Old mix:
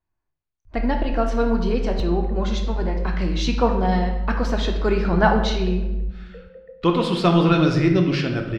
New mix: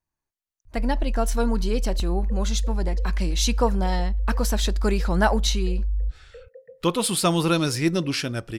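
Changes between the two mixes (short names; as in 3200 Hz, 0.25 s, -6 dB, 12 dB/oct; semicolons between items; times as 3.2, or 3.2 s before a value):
speech: remove air absorption 220 m; reverb: off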